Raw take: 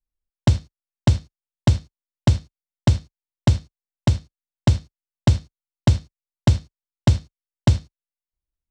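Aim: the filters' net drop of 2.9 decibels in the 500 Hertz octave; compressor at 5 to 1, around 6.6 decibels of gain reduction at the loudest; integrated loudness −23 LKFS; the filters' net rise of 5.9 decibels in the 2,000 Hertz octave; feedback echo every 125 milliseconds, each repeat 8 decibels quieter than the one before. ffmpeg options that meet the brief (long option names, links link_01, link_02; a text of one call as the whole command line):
ffmpeg -i in.wav -af "equalizer=frequency=500:width_type=o:gain=-4.5,equalizer=frequency=2000:width_type=o:gain=7.5,acompressor=threshold=-17dB:ratio=5,aecho=1:1:125|250|375|500|625:0.398|0.159|0.0637|0.0255|0.0102,volume=5dB" out.wav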